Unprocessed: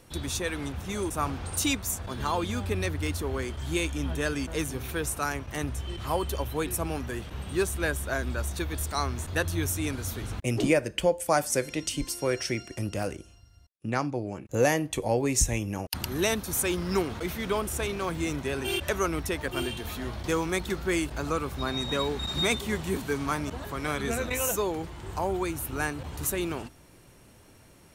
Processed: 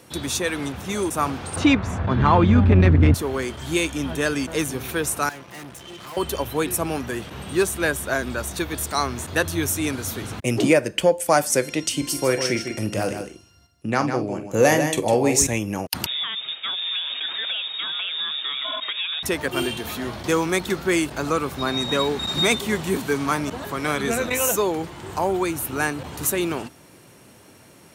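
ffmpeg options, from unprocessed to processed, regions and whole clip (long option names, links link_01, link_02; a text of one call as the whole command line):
ffmpeg -i in.wav -filter_complex "[0:a]asettb=1/sr,asplit=3[link_01][link_02][link_03];[link_01]atrim=end=1.564[link_04];[link_02]atrim=start=1.56:end=3.14,asetpts=PTS-STARTPTS,afade=type=in:duration=0.004:curve=qsin,afade=type=out:start_time=1.576:duration=0.004:curve=qsin,lowpass=2000,asubboost=boost=12:cutoff=200,acontrast=86[link_05];[link_03]atrim=start=3.136[link_06];[link_04][link_05]acrossfade=duration=0.004:curve1=hsin:curve2=qsin[link_07];[link_07][link_06]acrossfade=duration=0.004:curve1=qsin:curve2=hsin,asettb=1/sr,asplit=3[link_08][link_09][link_10];[link_08]atrim=end=5.294[link_11];[link_09]atrim=start=5.29:end=6.17,asetpts=PTS-STARTPTS,afade=type=in:duration=0.004:curve=qsin,afade=type=out:start_time=0.876:duration=0.004:curve=qsin,highpass=frequency=170:poles=1,aecho=1:1:5.8:0.38,atrim=end_sample=38808,aeval=exprs='(tanh(126*val(0)+0.75)-tanh(0.75))/126':channel_layout=same[link_12];[link_10]atrim=start=6.166[link_13];[link_11][link_12]acrossfade=duration=0.004:curve1=hsin:curve2=qsin[link_14];[link_14][link_13]acrossfade=duration=0.004:curve1=qsin:curve2=hsin,asettb=1/sr,asplit=3[link_15][link_16][link_17];[link_15]atrim=end=11.924[link_18];[link_16]atrim=start=11.92:end=15.47,asetpts=PTS-STARTPTS,afade=type=in:duration=0.004:curve=qsin,afade=type=out:start_time=3.546:duration=0.004:curve=qsin,asplit=2[link_19][link_20];[link_20]adelay=46,volume=-11dB[link_21];[link_19][link_21]amix=inputs=2:normalize=0,atrim=end_sample=156555,aecho=1:1:153:0.398,atrim=end_sample=156555[link_22];[link_17]atrim=start=15.466[link_23];[link_18][link_22]acrossfade=duration=0.004:curve1=hsin:curve2=qsin[link_24];[link_24][link_23]acrossfade=duration=0.004:curve1=qsin:curve2=hsin,asettb=1/sr,asplit=3[link_25][link_26][link_27];[link_25]atrim=end=16.064[link_28];[link_26]atrim=start=16.06:end=19.23,asetpts=PTS-STARTPTS,afade=type=in:duration=0.004:curve=qsin,afade=type=out:start_time=3.166:duration=0.004:curve=qsin,acompressor=threshold=-30dB:ratio=6:attack=3.2:release=140:knee=1:detection=peak,lowpass=frequency=3200:width_type=q:width=0.5098,lowpass=frequency=3200:width_type=q:width=0.6013,lowpass=frequency=3200:width_type=q:width=0.9,lowpass=frequency=3200:width_type=q:width=2.563,afreqshift=-3800[link_29];[link_27]atrim=start=19.226[link_30];[link_28][link_29]acrossfade=duration=0.004:curve1=hsin:curve2=qsin[link_31];[link_31][link_30]acrossfade=duration=0.004:curve1=qsin:curve2=hsin,acontrast=79,highpass=130" out.wav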